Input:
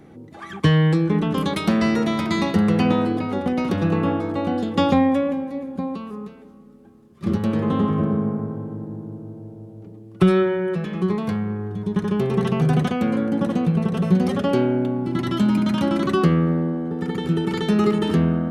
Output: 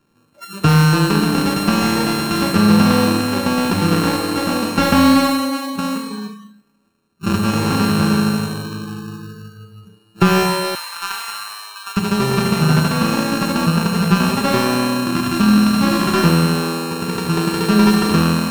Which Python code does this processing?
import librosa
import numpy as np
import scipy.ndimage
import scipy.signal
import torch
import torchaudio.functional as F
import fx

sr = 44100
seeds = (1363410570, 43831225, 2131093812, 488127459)

y = np.r_[np.sort(x[:len(x) // 32 * 32].reshape(-1, 32), axis=1).ravel(), x[len(x) // 32 * 32:]]
y = fx.rev_schroeder(y, sr, rt60_s=1.5, comb_ms=30, drr_db=5.0)
y = fx.noise_reduce_blind(y, sr, reduce_db=20)
y = fx.highpass(y, sr, hz=980.0, slope=24, at=(10.75, 11.97))
y = fx.slew_limit(y, sr, full_power_hz=550.0)
y = y * librosa.db_to_amplitude(3.0)